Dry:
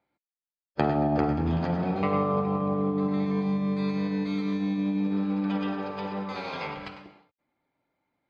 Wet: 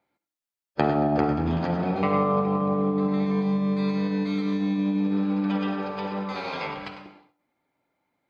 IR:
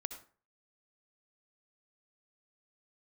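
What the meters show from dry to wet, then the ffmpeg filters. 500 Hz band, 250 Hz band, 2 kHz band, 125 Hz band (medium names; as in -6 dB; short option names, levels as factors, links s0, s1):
+3.0 dB, +2.5 dB, +3.0 dB, +1.5 dB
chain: -filter_complex "[0:a]asplit=2[s0][s1];[s1]highpass=f=160:p=1[s2];[1:a]atrim=start_sample=2205[s3];[s2][s3]afir=irnorm=-1:irlink=0,volume=1.19[s4];[s0][s4]amix=inputs=2:normalize=0,volume=0.708"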